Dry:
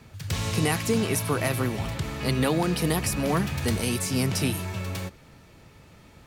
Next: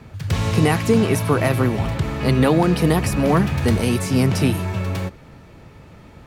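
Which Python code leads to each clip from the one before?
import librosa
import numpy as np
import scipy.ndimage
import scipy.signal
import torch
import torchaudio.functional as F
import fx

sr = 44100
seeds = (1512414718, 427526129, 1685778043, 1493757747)

y = fx.high_shelf(x, sr, hz=2800.0, db=-10.5)
y = y * 10.0 ** (8.5 / 20.0)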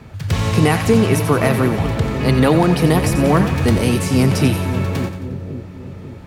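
y = fx.echo_split(x, sr, split_hz=570.0, low_ms=543, high_ms=89, feedback_pct=52, wet_db=-10)
y = y * 10.0 ** (2.5 / 20.0)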